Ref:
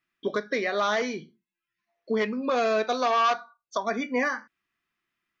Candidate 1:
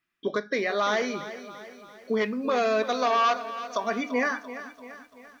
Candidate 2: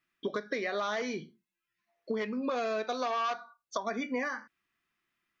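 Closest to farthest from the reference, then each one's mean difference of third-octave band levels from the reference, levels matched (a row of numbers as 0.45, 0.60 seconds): 2, 1; 1.5, 3.5 decibels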